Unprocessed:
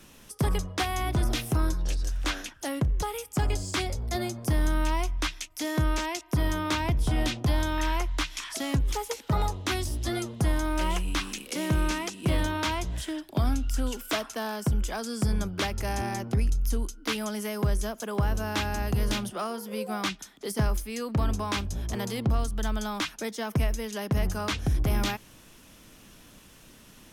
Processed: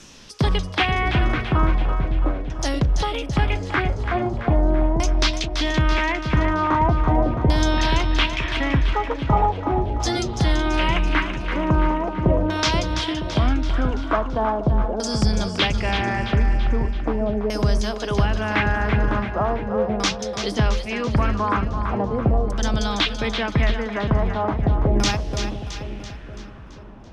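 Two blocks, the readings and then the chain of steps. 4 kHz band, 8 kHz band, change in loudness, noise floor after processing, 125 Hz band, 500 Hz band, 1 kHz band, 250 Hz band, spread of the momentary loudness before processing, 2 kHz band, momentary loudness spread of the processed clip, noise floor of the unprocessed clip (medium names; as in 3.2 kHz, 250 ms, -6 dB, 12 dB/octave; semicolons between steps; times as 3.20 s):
+7.5 dB, +1.5 dB, +7.5 dB, -34 dBFS, +7.0 dB, +9.5 dB, +9.5 dB, +7.5 dB, 5 LU, +9.0 dB, 5 LU, -53 dBFS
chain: LFO low-pass saw down 0.4 Hz 480–6400 Hz; two-band feedback delay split 670 Hz, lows 478 ms, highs 334 ms, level -7.5 dB; trim +6 dB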